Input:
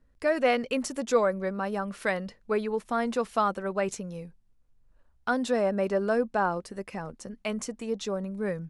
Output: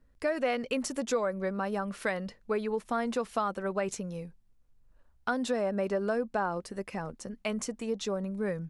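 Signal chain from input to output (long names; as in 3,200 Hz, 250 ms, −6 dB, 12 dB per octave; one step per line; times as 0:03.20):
downward compressor 3 to 1, threshold −27 dBFS, peak gain reduction 8 dB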